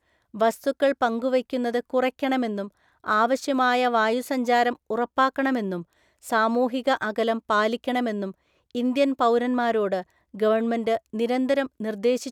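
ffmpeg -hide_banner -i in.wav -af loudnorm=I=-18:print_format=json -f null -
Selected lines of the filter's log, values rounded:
"input_i" : "-24.2",
"input_tp" : "-7.7",
"input_lra" : "1.5",
"input_thresh" : "-34.5",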